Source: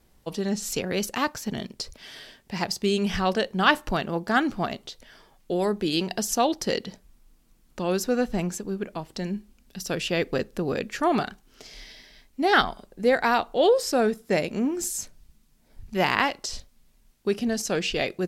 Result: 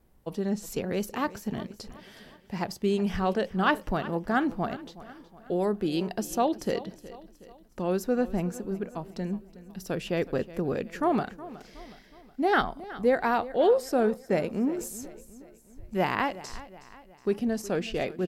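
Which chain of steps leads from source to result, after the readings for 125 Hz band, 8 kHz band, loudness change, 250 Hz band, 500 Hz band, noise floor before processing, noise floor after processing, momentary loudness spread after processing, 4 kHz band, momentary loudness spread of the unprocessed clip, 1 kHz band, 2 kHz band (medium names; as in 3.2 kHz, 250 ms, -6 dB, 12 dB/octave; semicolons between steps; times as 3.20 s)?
-1.5 dB, -10.5 dB, -3.0 dB, -1.5 dB, -2.0 dB, -61 dBFS, -56 dBFS, 19 LU, -10.5 dB, 15 LU, -3.5 dB, -6.0 dB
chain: peaking EQ 5 kHz -10.5 dB 2.7 oct; feedback delay 368 ms, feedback 49%, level -17 dB; trim -1.5 dB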